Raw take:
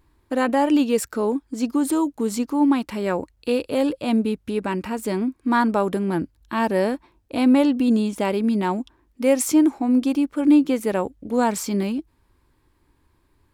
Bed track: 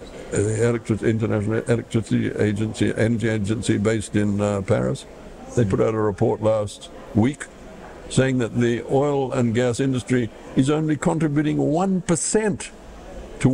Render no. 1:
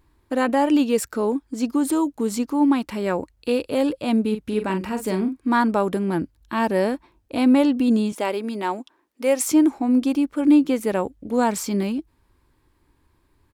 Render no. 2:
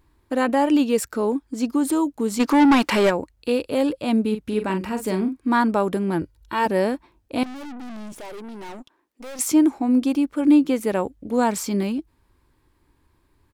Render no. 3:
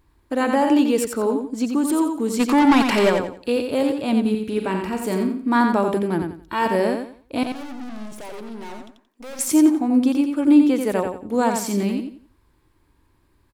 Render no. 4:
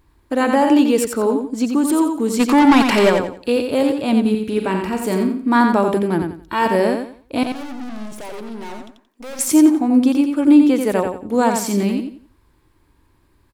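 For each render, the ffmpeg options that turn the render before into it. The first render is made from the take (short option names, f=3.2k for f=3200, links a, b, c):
-filter_complex "[0:a]asplit=3[a][b][c];[a]afade=t=out:st=4.31:d=0.02[d];[b]asplit=2[e][f];[f]adelay=42,volume=-8dB[g];[e][g]amix=inputs=2:normalize=0,afade=t=in:st=4.31:d=0.02,afade=t=out:st=5.36:d=0.02[h];[c]afade=t=in:st=5.36:d=0.02[i];[d][h][i]amix=inputs=3:normalize=0,asettb=1/sr,asplit=3[j][k][l];[j]atrim=end=8.124[m];[k]atrim=start=8.12:end=9.5,asetpts=PTS-STARTPTS,afade=t=in:d=0.004:c=qsin,afade=t=out:st=1.376:d=0.004:c=qsin,highpass=360[n];[l]atrim=start=9.496[o];[m][n]acrossfade=d=0.004:c1=hsin:c2=qsin[p];[p][o]acrossfade=d=0.004:c1=qsin:c2=hsin"
-filter_complex "[0:a]asplit=3[a][b][c];[a]afade=t=out:st=2.39:d=0.02[d];[b]asplit=2[e][f];[f]highpass=f=720:p=1,volume=24dB,asoftclip=type=tanh:threshold=-8dB[g];[e][g]amix=inputs=2:normalize=0,lowpass=f=5.5k:p=1,volume=-6dB,afade=t=in:st=2.39:d=0.02,afade=t=out:st=3.09:d=0.02[h];[c]afade=t=in:st=3.09:d=0.02[i];[d][h][i]amix=inputs=3:normalize=0,asettb=1/sr,asplit=3[j][k][l];[j]atrim=end=6.214[m];[k]atrim=start=6.21:end=6.66,asetpts=PTS-STARTPTS,afade=t=in:d=0.004:c=qsin,afade=t=out:st=0.446:d=0.004:c=qsin,aecho=1:1:2.1:0.65,atrim=end_sample=19845[n];[l]atrim=start=6.656[o];[m][n]acrossfade=d=0.004:c1=hsin:c2=qsin[p];[p][o]acrossfade=d=0.004:c1=qsin:c2=hsin,asettb=1/sr,asplit=3[q][r][s];[q]atrim=end=7.434[t];[r]atrim=start=7.43:end=9.39,asetpts=PTS-STARTPTS,afade=t=in:d=0.004:c=qsin,afade=t=out:st=1.956:d=0.004:c=qsin,aeval=exprs='(tanh(56.2*val(0)+0.55)-tanh(0.55))/56.2':c=same[u];[s]atrim=start=9.386[v];[t][u]acrossfade=d=0.004:c1=hsin:c2=qsin[w];[w][v]acrossfade=d=0.004:c1=qsin:c2=hsin"
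-af "aecho=1:1:88|176|264|352:0.531|0.143|0.0387|0.0104"
-af "volume=3.5dB,alimiter=limit=-3dB:level=0:latency=1"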